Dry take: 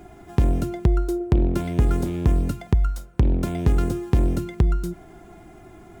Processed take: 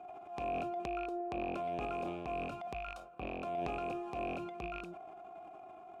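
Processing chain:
loose part that buzzes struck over −22 dBFS, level −26 dBFS
formant filter a
transient designer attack −7 dB, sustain +8 dB
level +3.5 dB

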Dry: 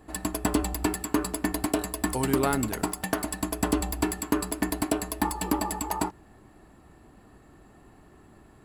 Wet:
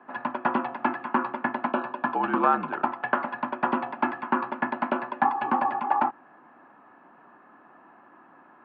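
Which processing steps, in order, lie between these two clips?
flat-topped bell 1,200 Hz +9.5 dB 1.2 octaves
single-sideband voice off tune −59 Hz 310–2,900 Hz
0:01.66–0:02.86: notch filter 2,000 Hz, Q 5.6

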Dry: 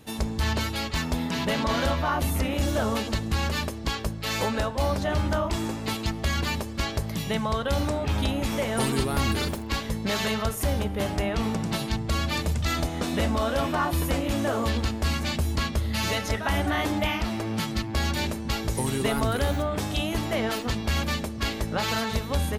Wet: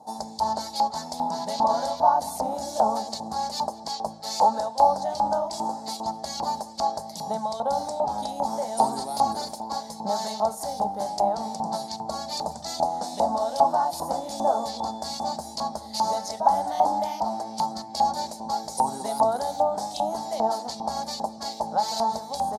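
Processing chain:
drawn EQ curve 110 Hz 0 dB, 210 Hz +11 dB, 370 Hz −2 dB, 820 Hz +15 dB, 1,200 Hz −14 dB, 1,800 Hz −23 dB, 2,700 Hz −27 dB, 4,500 Hz +9 dB, 9,700 Hz +14 dB, 14,000 Hz +9 dB
auto-filter band-pass saw up 2.5 Hz 950–2,700 Hz
0:14.14–0:15.25: steady tone 3,500 Hz −60 dBFS
slap from a distant wall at 34 metres, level −20 dB
level +7.5 dB

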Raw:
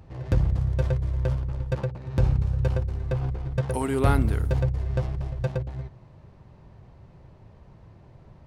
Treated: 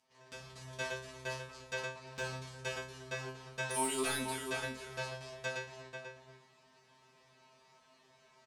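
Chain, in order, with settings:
low-pass filter 7,800 Hz 12 dB per octave
first difference
comb filter 4.6 ms, depth 79%
slap from a distant wall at 84 metres, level −6 dB
automatic gain control gain up to 11.5 dB
soft clipping −22 dBFS, distortion −16 dB
tuned comb filter 130 Hz, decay 0.34 s, harmonics all, mix 100%
level +8.5 dB

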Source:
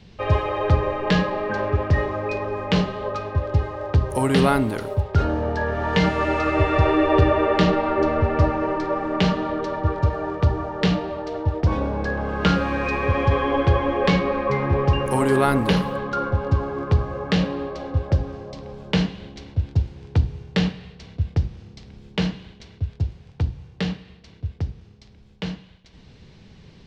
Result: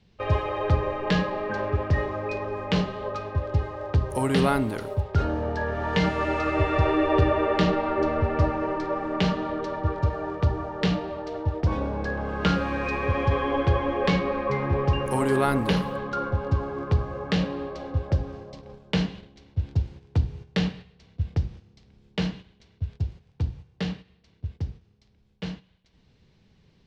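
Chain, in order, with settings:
noise gate −35 dBFS, range −9 dB
level −4 dB

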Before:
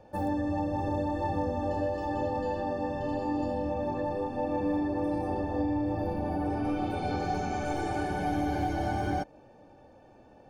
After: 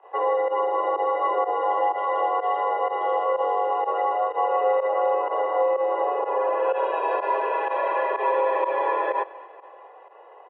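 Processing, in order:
repeating echo 228 ms, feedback 59%, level −20 dB
fake sidechain pumping 125 BPM, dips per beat 1, −18 dB, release 64 ms
single-sideband voice off tune +230 Hz 160–2,700 Hz
level +8 dB

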